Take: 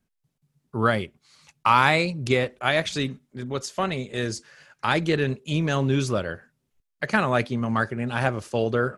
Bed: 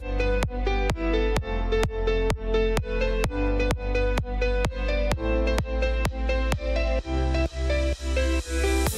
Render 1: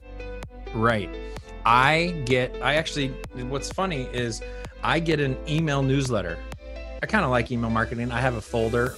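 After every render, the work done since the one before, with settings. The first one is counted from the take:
mix in bed −12 dB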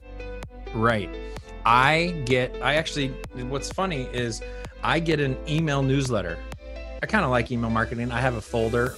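no processing that can be heard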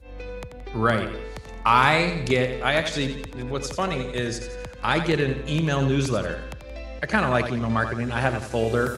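repeating echo 87 ms, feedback 44%, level −9 dB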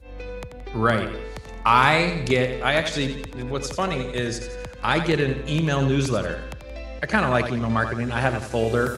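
level +1 dB

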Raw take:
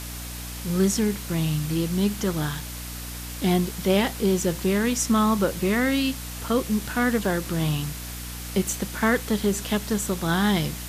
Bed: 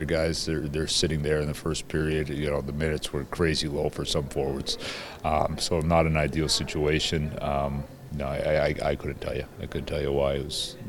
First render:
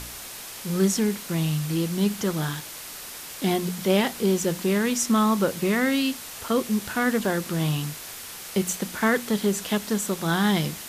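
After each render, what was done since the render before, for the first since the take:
hum removal 60 Hz, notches 5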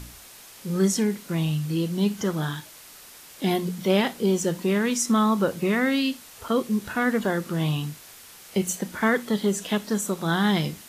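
noise reduction from a noise print 8 dB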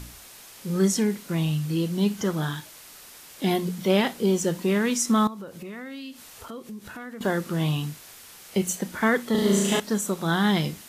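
0:05.27–0:07.21: downward compressor 4 to 1, threshold −38 dBFS
0:09.31–0:09.80: flutter between parallel walls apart 6.1 metres, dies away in 1.4 s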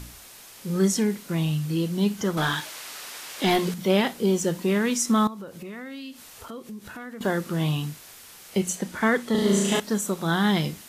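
0:02.37–0:03.74: mid-hump overdrive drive 17 dB, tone 4,700 Hz, clips at −12 dBFS
0:08.60–0:09.75: low-pass filter 12,000 Hz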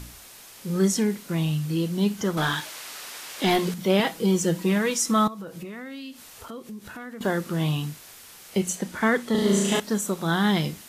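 0:03.99–0:05.65: comb filter 6.2 ms, depth 59%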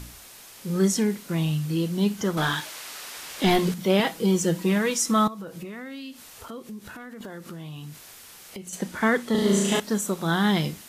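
0:03.17–0:03.72: low-shelf EQ 120 Hz +11 dB
0:06.88–0:08.73: downward compressor 5 to 1, threshold −36 dBFS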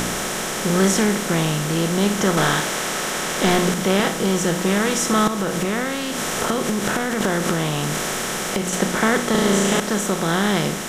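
compressor on every frequency bin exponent 0.4
speech leveller within 3 dB 2 s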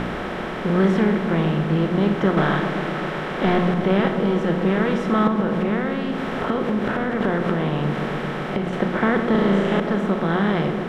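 high-frequency loss of the air 430 metres
feedback echo with a low-pass in the loop 130 ms, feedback 83%, low-pass 1,200 Hz, level −8 dB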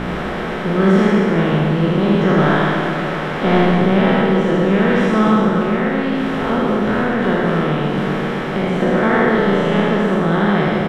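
peak hold with a decay on every bin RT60 2.75 s
on a send: single-tap delay 78 ms −3.5 dB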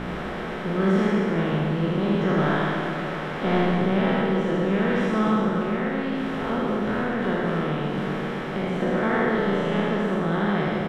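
level −8 dB

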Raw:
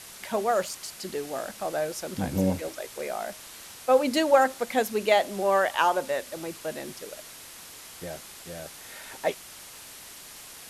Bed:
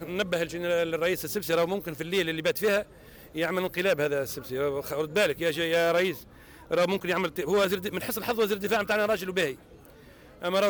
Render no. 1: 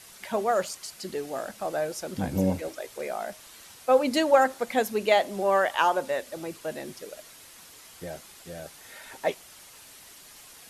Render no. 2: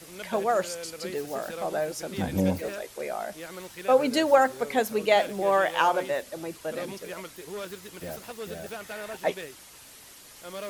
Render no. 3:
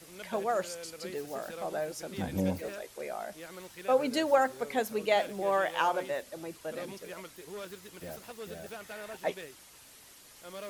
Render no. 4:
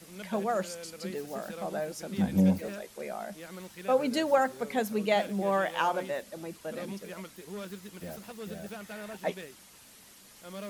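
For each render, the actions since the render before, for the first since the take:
broadband denoise 6 dB, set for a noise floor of −46 dBFS
mix in bed −13 dB
level −5.5 dB
parametric band 200 Hz +11.5 dB 0.38 octaves

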